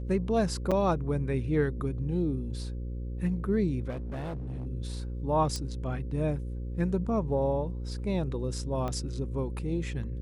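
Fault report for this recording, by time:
buzz 60 Hz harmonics 9 -35 dBFS
0.71–0.72 s: dropout 6 ms
3.89–4.67 s: clipped -32.5 dBFS
5.56 s: pop -20 dBFS
8.88 s: pop -21 dBFS

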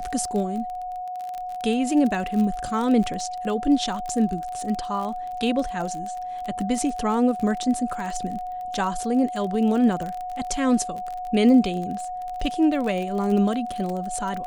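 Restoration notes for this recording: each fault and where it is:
crackle 31 per s -28 dBFS
whine 730 Hz -29 dBFS

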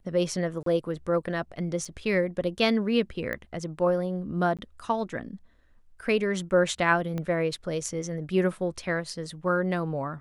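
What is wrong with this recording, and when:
0.63–0.66 s: dropout 33 ms
1.85 s: dropout 4.6 ms
3.33 s: pop -20 dBFS
4.57–4.59 s: dropout 17 ms
7.18 s: pop -20 dBFS

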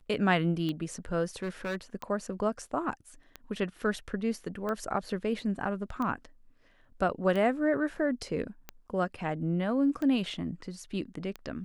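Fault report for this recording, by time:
tick 45 rpm -22 dBFS
1.42–1.76 s: clipped -29.5 dBFS

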